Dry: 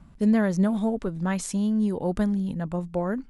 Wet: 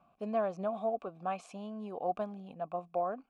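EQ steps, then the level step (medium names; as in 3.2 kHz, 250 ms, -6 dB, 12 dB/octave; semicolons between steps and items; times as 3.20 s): vowel filter a; +5.5 dB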